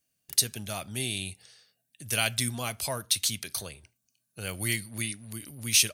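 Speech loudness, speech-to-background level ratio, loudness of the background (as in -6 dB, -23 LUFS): -29.5 LUFS, 17.0 dB, -46.5 LUFS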